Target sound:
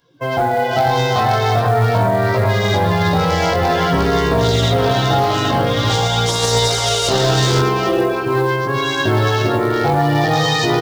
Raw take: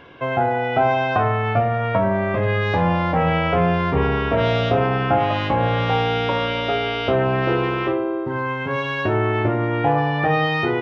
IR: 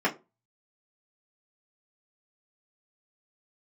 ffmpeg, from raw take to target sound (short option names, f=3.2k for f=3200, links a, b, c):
-filter_complex "[0:a]equalizer=f=130:w=4.5:g=5.5,asplit=2[a][b];[b]aecho=0:1:120|123|339|398|487|849:0.266|0.112|0.266|0.299|0.531|0.178[c];[a][c]amix=inputs=2:normalize=0,asettb=1/sr,asplit=3[d][e][f];[d]atrim=end=6.264[g];[e]atrim=start=6.26:end=7.6,asetpts=PTS-STARTPTS,afade=t=in:d=0.004:c=qsin,afade=t=out:st=1.336:d=0.004:c=qsin,acontrast=90[h];[f]atrim=start=7.596[i];[g][h]acrossfade=d=0.004:c1=hsin:c2=qsin[j];[j][i]acrossfade=d=0.004:c1=qsin:c2=hsin,afftdn=nr=24:nf=-32,asoftclip=type=tanh:threshold=-9.5dB,flanger=delay=17:depth=5.1:speed=0.46,aexciter=amount=12.9:drive=6.9:freq=4k,acrusher=bits=7:mode=log:mix=0:aa=0.000001,alimiter=level_in=12.5dB:limit=-1dB:release=50:level=0:latency=1,volume=-6dB"